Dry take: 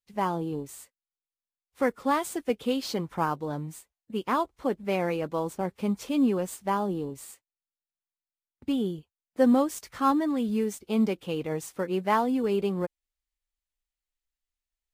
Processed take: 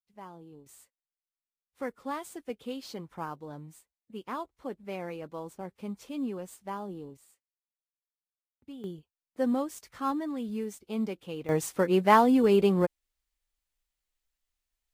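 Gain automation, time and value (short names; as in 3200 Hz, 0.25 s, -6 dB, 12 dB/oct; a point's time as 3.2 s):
-18.5 dB
from 0.66 s -10 dB
from 7.17 s -17 dB
from 8.84 s -7 dB
from 11.49 s +4.5 dB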